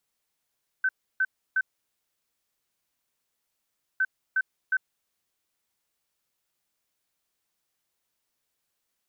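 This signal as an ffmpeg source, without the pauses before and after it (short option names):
-f lavfi -i "aevalsrc='0.0944*sin(2*PI*1530*t)*clip(min(mod(mod(t,3.16),0.36),0.05-mod(mod(t,3.16),0.36))/0.005,0,1)*lt(mod(t,3.16),1.08)':d=6.32:s=44100"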